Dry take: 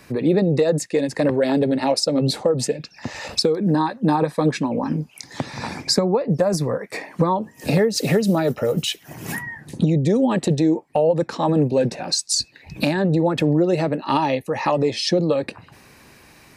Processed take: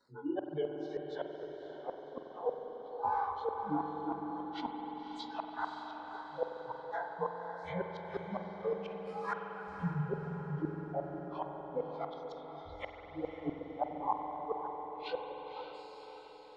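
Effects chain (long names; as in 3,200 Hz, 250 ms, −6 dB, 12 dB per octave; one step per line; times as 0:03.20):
partials spread apart or drawn together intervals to 92%
noise reduction from a noise print of the clip's start 29 dB
gate on every frequency bin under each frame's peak −30 dB strong
graphic EQ with 10 bands 125 Hz −10 dB, 250 Hz +4 dB, 500 Hz +4 dB, 1,000 Hz +11 dB, 2,000 Hz −10 dB
reversed playback
downward compressor 10 to 1, threshold −32 dBFS, peak gain reduction 22.5 dB
reversed playback
tuned comb filter 180 Hz, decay 1.1 s, mix 40%
chorus effect 1.9 Hz, delay 19.5 ms, depth 5.7 ms
gate with flip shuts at −35 dBFS, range −38 dB
auto-filter low-pass sine 0.27 Hz 830–3,400 Hz
feedback delay with all-pass diffusion 550 ms, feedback 52%, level −8 dB
on a send at −4 dB: convolution reverb RT60 5.2 s, pre-delay 46 ms
on the sum: level +9 dB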